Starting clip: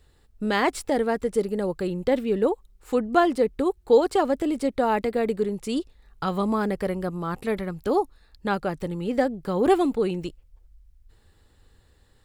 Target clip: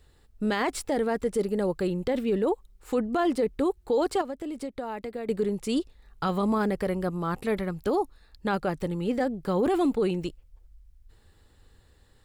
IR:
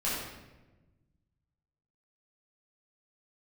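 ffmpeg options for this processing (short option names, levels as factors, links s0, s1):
-filter_complex "[0:a]asettb=1/sr,asplit=3[s0][s1][s2];[s0]atrim=end=4.214[s3];[s1]atrim=start=4.21:end=5.29,asetpts=PTS-STARTPTS,afade=t=in:d=0.004:c=qsin,afade=t=out:st=1.076:d=0.004:c=qsin,acompressor=threshold=0.0251:ratio=6[s4];[s2]atrim=start=5.286[s5];[s3][s4]acrossfade=d=0.004:c1=hsin:c2=qsin[s6];[s6][s5]acrossfade=d=0.004:c1=qsin:c2=hsin,alimiter=limit=0.133:level=0:latency=1:release=10"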